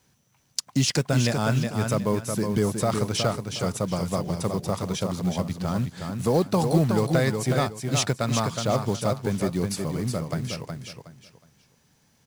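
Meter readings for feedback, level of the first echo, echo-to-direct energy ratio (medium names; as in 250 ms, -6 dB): 26%, -5.5 dB, -5.0 dB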